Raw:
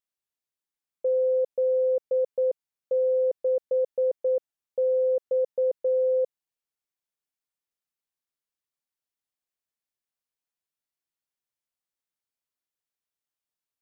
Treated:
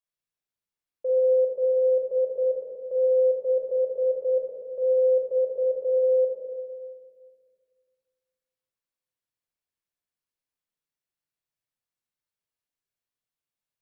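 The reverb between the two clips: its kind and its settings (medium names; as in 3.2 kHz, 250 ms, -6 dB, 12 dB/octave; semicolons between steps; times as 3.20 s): simulated room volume 2400 m³, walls mixed, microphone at 5.5 m; trim -9 dB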